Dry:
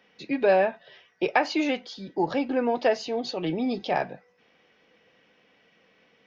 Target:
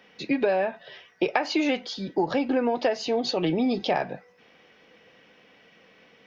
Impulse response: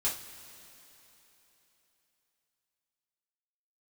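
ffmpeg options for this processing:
-af "acompressor=threshold=-26dB:ratio=10,volume=6dB"

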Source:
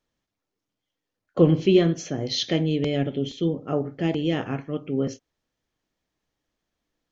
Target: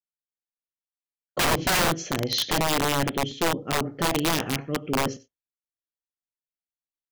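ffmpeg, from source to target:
ffmpeg -i in.wav -af "agate=range=-33dB:threshold=-40dB:ratio=3:detection=peak,aecho=1:1:92:0.133,aeval=exprs='(mod(7.5*val(0)+1,2)-1)/7.5':channel_layout=same,volume=1dB" out.wav

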